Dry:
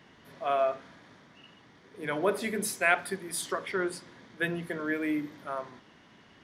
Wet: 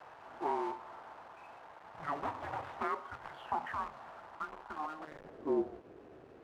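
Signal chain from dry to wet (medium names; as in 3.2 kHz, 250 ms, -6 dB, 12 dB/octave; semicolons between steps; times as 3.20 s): 2.23–2.88 s: square wave that keeps the level; tilt shelf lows +3.5 dB, about 1.4 kHz; compression 8:1, threshold -32 dBFS, peak gain reduction 16.5 dB; mistuned SSB -310 Hz 190–3500 Hz; saturation -26 dBFS, distortion -21 dB; 4.35–5.07 s: static phaser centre 550 Hz, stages 6; companded quantiser 4-bit; band-pass sweep 880 Hz -> 380 Hz, 4.73–5.51 s; trim +10 dB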